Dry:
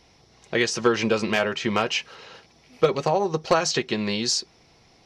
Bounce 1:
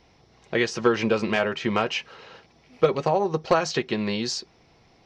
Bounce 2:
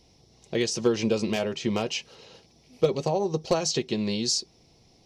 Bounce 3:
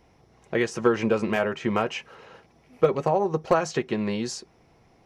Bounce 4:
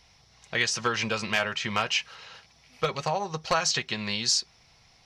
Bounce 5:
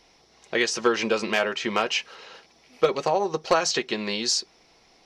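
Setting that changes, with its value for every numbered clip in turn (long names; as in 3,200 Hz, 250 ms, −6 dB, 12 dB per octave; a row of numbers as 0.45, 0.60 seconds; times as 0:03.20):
parametric band, centre frequency: 14,000, 1,500, 4,500, 340, 100 Hertz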